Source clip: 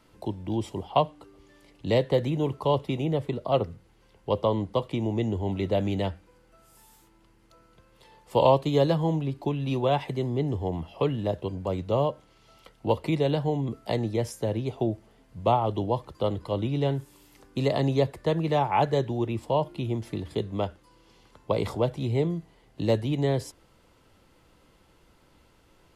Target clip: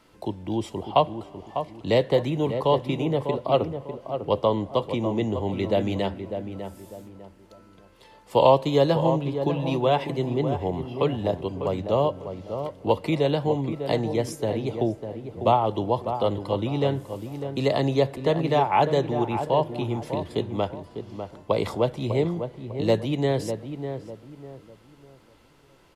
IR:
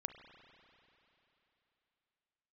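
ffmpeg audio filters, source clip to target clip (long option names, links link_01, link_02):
-filter_complex "[0:a]lowshelf=frequency=170:gain=-6.5,asplit=2[link_01][link_02];[link_02]adelay=599,lowpass=frequency=1400:poles=1,volume=-8dB,asplit=2[link_03][link_04];[link_04]adelay=599,lowpass=frequency=1400:poles=1,volume=0.33,asplit=2[link_05][link_06];[link_06]adelay=599,lowpass=frequency=1400:poles=1,volume=0.33,asplit=2[link_07][link_08];[link_08]adelay=599,lowpass=frequency=1400:poles=1,volume=0.33[link_09];[link_01][link_03][link_05][link_07][link_09]amix=inputs=5:normalize=0,asplit=2[link_10][link_11];[1:a]atrim=start_sample=2205,lowpass=8400[link_12];[link_11][link_12]afir=irnorm=-1:irlink=0,volume=-11.5dB[link_13];[link_10][link_13]amix=inputs=2:normalize=0,volume=2dB"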